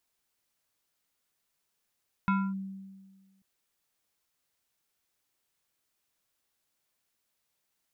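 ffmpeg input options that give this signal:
-f lavfi -i "aevalsrc='0.0841*pow(10,-3*t/1.53)*sin(2*PI*193*t+1*clip(1-t/0.26,0,1)*sin(2*PI*6.17*193*t))':d=1.14:s=44100"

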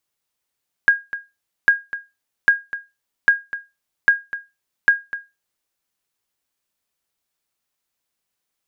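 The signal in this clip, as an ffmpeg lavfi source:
-f lavfi -i "aevalsrc='0.596*(sin(2*PI*1630*mod(t,0.8))*exp(-6.91*mod(t,0.8)/0.23)+0.188*sin(2*PI*1630*max(mod(t,0.8)-0.25,0))*exp(-6.91*max(mod(t,0.8)-0.25,0)/0.23))':d=4.8:s=44100"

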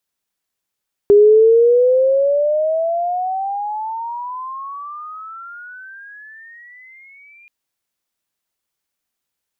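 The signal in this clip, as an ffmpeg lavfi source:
-f lavfi -i "aevalsrc='pow(10,(-5-38*t/6.38)/20)*sin(2*PI*405*6.38/(31*log(2)/12)*(exp(31*log(2)/12*t/6.38)-1))':d=6.38:s=44100"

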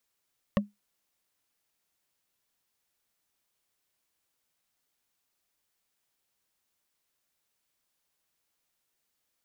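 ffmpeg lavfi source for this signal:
-f lavfi -i "aevalsrc='0.126*pow(10,-3*t/0.18)*sin(2*PI*205*t)+0.0944*pow(10,-3*t/0.053)*sin(2*PI*565.2*t)+0.0708*pow(10,-3*t/0.024)*sin(2*PI*1107.8*t)+0.0531*pow(10,-3*t/0.013)*sin(2*PI*1831.3*t)+0.0398*pow(10,-3*t/0.008)*sin(2*PI*2734.7*t)':d=0.45:s=44100"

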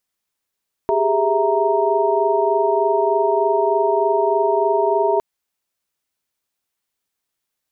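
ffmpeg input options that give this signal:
-f lavfi -i "aevalsrc='0.1*(sin(2*PI*392*t)+sin(2*PI*415.3*t)+sin(2*PI*659.26*t)+sin(2*PI*932.33*t))':d=4.31:s=44100"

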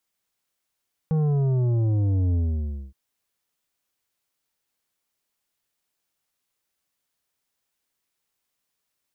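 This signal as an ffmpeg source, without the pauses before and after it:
-f lavfi -i "aevalsrc='0.1*clip((1.82-t)/0.59,0,1)*tanh(2.82*sin(2*PI*160*1.82/log(65/160)*(exp(log(65/160)*t/1.82)-1)))/tanh(2.82)':d=1.82:s=44100"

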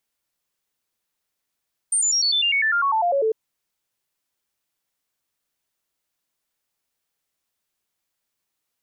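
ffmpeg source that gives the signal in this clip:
-f lavfi -i "aevalsrc='0.141*clip(min(mod(t,0.1),0.1-mod(t,0.1))/0.005,0,1)*sin(2*PI*8890*pow(2,-floor(t/0.1)/3)*mod(t,0.1))':d=1.4:s=44100"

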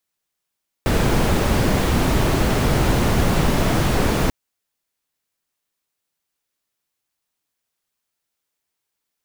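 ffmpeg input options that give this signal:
-f lavfi -i "anoisesrc=c=brown:a=0.661:d=3.44:r=44100:seed=1"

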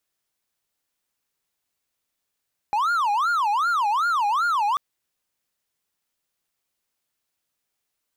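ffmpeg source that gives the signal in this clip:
-f lavfi -i "aevalsrc='0.141*(1-4*abs(mod((1116.5*t-303.5/(2*PI*2.6)*sin(2*PI*2.6*t))+0.25,1)-0.5))':d=2.04:s=44100"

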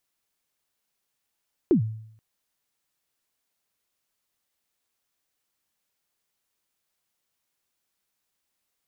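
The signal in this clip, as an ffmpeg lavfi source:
-f lavfi -i "aevalsrc='0.224*pow(10,-3*t/0.68)*sin(2*PI*(400*0.104/log(110/400)*(exp(log(110/400)*min(t,0.104)/0.104)-1)+110*max(t-0.104,0)))':d=0.48:s=44100"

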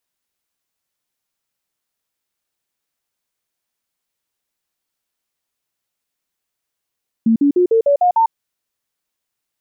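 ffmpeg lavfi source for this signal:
-f lavfi -i "aevalsrc='0.335*clip(min(mod(t,0.15),0.1-mod(t,0.15))/0.005,0,1)*sin(2*PI*226*pow(2,floor(t/0.15)/3)*mod(t,0.15))':d=1.05:s=44100"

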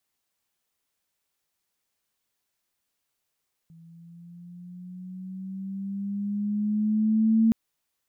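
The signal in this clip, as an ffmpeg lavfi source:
-f lavfi -i "aevalsrc='pow(10,(-16+31.5*(t/3.82-1))/20)*sin(2*PI*164*3.82/(5.5*log(2)/12)*(exp(5.5*log(2)/12*t/3.82)-1))':d=3.82:s=44100"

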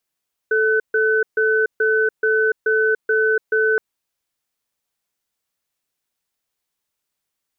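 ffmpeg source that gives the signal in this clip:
-f lavfi -i "aevalsrc='0.141*(sin(2*PI*438*t)+sin(2*PI*1510*t))*clip(min(mod(t,0.43),0.29-mod(t,0.43))/0.005,0,1)':d=3.27:s=44100"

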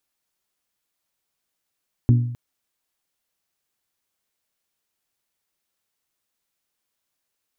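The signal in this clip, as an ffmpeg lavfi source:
-f lavfi -i "aevalsrc='0.335*pow(10,-3*t/0.73)*sin(2*PI*120*t)+0.141*pow(10,-3*t/0.449)*sin(2*PI*240*t)+0.0596*pow(10,-3*t/0.396)*sin(2*PI*288*t)+0.0251*pow(10,-3*t/0.338)*sin(2*PI*360*t)':d=0.26:s=44100"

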